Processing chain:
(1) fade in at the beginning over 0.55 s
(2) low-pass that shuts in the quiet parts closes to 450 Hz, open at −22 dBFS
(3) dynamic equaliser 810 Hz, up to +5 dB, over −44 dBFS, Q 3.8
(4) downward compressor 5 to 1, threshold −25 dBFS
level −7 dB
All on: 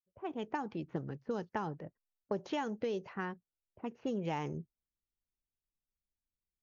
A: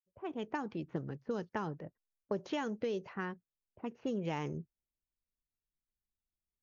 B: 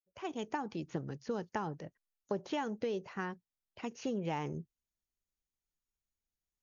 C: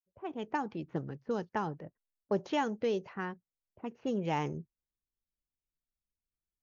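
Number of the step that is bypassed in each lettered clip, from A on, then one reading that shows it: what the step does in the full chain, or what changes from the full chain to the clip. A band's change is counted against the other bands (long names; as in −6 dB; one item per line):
3, 1 kHz band −2.5 dB
2, 4 kHz band +1.5 dB
4, average gain reduction 1.5 dB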